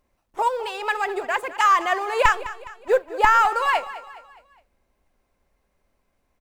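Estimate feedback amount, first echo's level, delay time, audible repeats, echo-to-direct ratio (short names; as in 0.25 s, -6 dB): 45%, -15.5 dB, 0.207 s, 3, -14.5 dB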